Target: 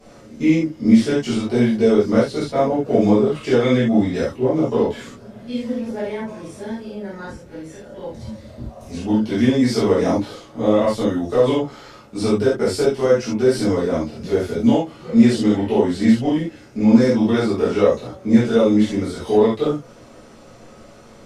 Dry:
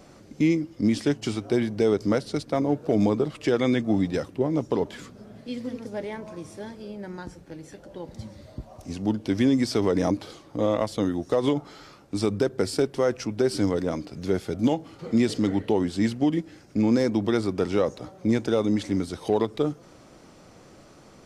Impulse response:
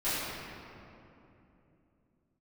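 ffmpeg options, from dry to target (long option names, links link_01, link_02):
-filter_complex "[1:a]atrim=start_sample=2205,atrim=end_sample=3087,asetrate=30870,aresample=44100[link_01];[0:a][link_01]afir=irnorm=-1:irlink=0,volume=-2dB"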